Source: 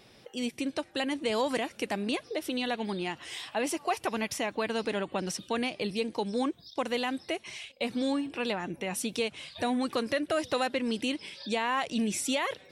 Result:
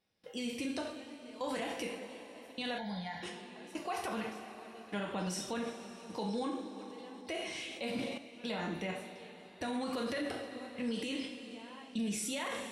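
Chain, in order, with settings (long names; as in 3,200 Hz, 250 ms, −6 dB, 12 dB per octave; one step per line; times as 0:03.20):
gate pattern ".xxx..xx.." 64 BPM −24 dB
coupled-rooms reverb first 0.52 s, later 4.4 s, from −18 dB, DRR −1 dB
brickwall limiter −24.5 dBFS, peak gain reduction 10 dB
0:02.78–0:03.23: phaser with its sweep stopped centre 1,800 Hz, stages 8
0:06.77–0:08.18: level that may fall only so fast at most 32 dB per second
level −4 dB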